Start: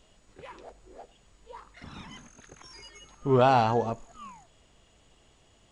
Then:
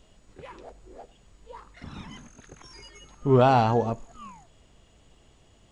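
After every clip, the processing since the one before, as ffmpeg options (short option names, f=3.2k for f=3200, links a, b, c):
-af "lowshelf=f=420:g=5.5"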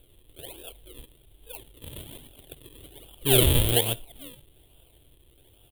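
-af "acrusher=samples=41:mix=1:aa=0.000001:lfo=1:lforange=41:lforate=1.2,aeval=exprs='0.237*(abs(mod(val(0)/0.237+3,4)-2)-1)':c=same,firequalizer=gain_entry='entry(130,0);entry(190,-13);entry(320,1);entry(1200,-11);entry(2100,-4);entry(3300,14);entry(5300,-18);entry(9400,15)':delay=0.05:min_phase=1"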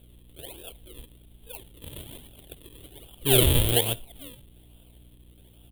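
-af "aeval=exprs='val(0)+0.00224*(sin(2*PI*60*n/s)+sin(2*PI*2*60*n/s)/2+sin(2*PI*3*60*n/s)/3+sin(2*PI*4*60*n/s)/4+sin(2*PI*5*60*n/s)/5)':c=same"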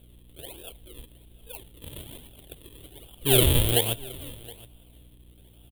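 -af "aecho=1:1:719:0.0841"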